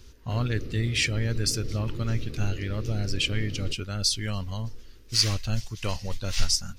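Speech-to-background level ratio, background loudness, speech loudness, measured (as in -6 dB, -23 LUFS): 11.0 dB, -39.5 LUFS, -28.5 LUFS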